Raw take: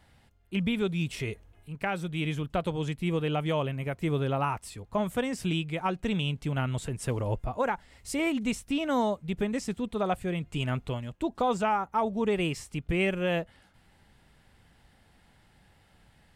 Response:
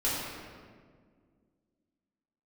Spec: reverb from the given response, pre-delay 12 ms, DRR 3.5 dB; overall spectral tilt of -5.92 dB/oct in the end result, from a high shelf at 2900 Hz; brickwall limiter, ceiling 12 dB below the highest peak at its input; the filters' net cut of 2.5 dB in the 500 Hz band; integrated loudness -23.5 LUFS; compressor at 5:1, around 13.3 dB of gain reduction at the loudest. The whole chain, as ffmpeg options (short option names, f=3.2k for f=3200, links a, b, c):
-filter_complex "[0:a]equalizer=f=500:t=o:g=-3,highshelf=f=2.9k:g=-3,acompressor=threshold=-40dB:ratio=5,alimiter=level_in=15dB:limit=-24dB:level=0:latency=1,volume=-15dB,asplit=2[a][b];[1:a]atrim=start_sample=2205,adelay=12[c];[b][c]afir=irnorm=-1:irlink=0,volume=-13dB[d];[a][d]amix=inputs=2:normalize=0,volume=22.5dB"